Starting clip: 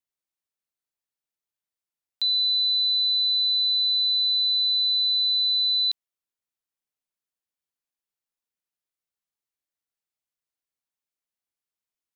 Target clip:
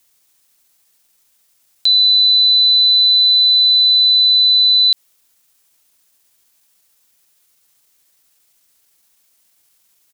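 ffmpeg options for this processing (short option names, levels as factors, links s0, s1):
-af "atempo=1.2,highshelf=f=3500:g=10,alimiter=level_in=35.5:limit=0.891:release=50:level=0:latency=1,volume=0.447"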